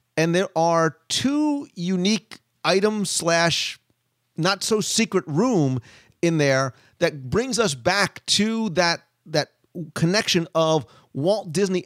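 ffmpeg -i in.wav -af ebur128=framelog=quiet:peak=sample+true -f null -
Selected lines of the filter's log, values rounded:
Integrated loudness:
  I:         -21.9 LUFS
  Threshold: -32.3 LUFS
Loudness range:
  LRA:         1.1 LU
  Threshold: -42.3 LUFS
  LRA low:   -22.7 LUFS
  LRA high:  -21.6 LUFS
Sample peak:
  Peak:       -5.4 dBFS
True peak:
  Peak:       -5.3 dBFS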